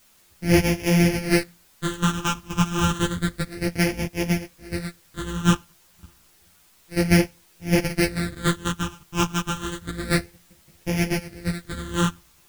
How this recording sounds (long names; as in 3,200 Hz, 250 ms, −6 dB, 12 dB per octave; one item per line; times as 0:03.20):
a buzz of ramps at a fixed pitch in blocks of 256 samples
phaser sweep stages 8, 0.3 Hz, lowest notch 580–1,200 Hz
a quantiser's noise floor 10 bits, dither triangular
a shimmering, thickened sound